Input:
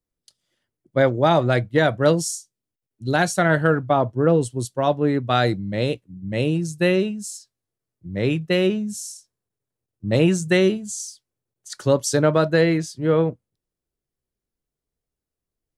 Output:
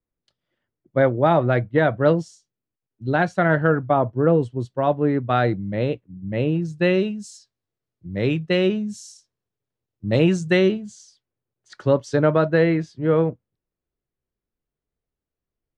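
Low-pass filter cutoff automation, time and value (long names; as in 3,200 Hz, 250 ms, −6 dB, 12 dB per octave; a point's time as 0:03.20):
0:06.49 2,200 Hz
0:07.07 4,800 Hz
0:10.44 4,800 Hz
0:11.06 2,600 Hz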